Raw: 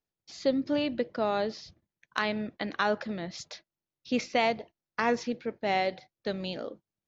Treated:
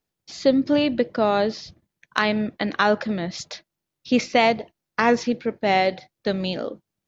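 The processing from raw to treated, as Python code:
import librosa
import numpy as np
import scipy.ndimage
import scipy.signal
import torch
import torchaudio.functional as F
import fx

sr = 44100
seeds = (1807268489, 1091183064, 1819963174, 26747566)

y = fx.peak_eq(x, sr, hz=180.0, db=2.0, octaves=1.5)
y = y * librosa.db_to_amplitude(8.0)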